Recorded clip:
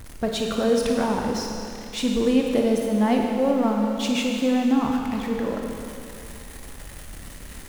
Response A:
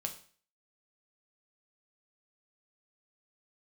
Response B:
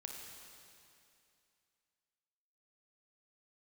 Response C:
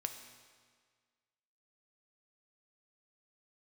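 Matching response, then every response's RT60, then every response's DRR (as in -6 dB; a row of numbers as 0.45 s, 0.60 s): B; 0.45 s, 2.6 s, 1.7 s; 3.5 dB, 0.5 dB, 6.0 dB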